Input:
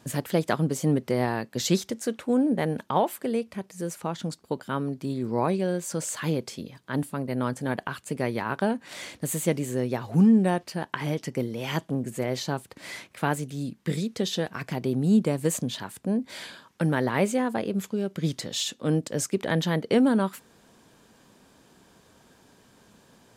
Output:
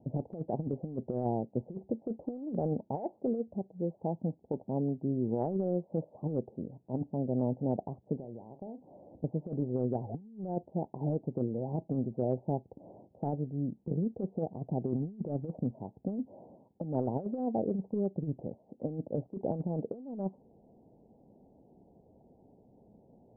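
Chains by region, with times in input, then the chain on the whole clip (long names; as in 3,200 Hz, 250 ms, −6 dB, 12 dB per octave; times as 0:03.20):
0:08.17–0:09.24: downward compressor 5 to 1, threshold −39 dBFS + double-tracking delay 42 ms −12 dB
whole clip: Butterworth low-pass 820 Hz 72 dB per octave; compressor whose output falls as the input rises −27 dBFS, ratio −0.5; level −4.5 dB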